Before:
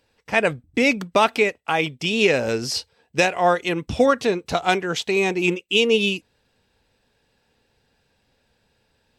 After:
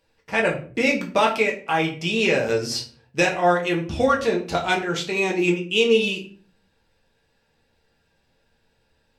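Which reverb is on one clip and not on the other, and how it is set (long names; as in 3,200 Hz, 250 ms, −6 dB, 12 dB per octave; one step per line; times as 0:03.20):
rectangular room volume 31 cubic metres, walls mixed, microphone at 0.57 metres
level −4.5 dB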